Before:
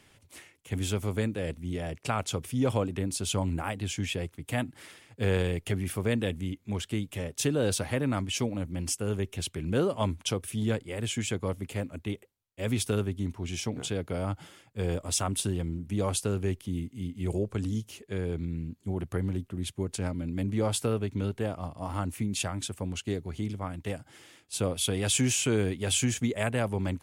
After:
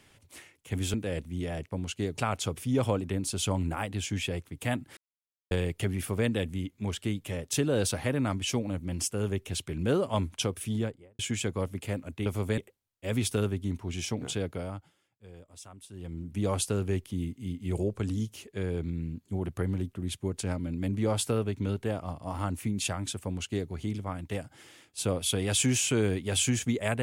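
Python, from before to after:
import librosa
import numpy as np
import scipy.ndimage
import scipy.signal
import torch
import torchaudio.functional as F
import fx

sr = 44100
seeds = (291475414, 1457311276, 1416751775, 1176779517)

y = fx.studio_fade_out(x, sr, start_s=10.52, length_s=0.54)
y = fx.edit(y, sr, fx.move(start_s=0.94, length_s=0.32, to_s=12.13),
    fx.silence(start_s=4.84, length_s=0.54),
    fx.fade_down_up(start_s=13.98, length_s=1.96, db=-19.5, fade_s=0.48),
    fx.duplicate(start_s=22.8, length_s=0.45, to_s=2.04), tone=tone)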